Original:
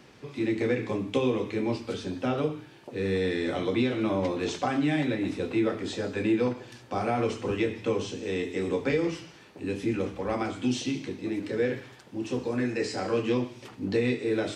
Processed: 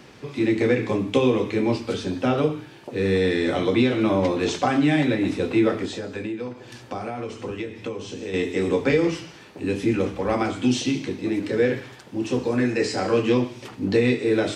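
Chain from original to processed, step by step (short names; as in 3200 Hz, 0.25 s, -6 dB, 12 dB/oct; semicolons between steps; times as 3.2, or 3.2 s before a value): 5.85–8.34 compressor 4:1, threshold -36 dBFS, peak gain reduction 13 dB; gain +6.5 dB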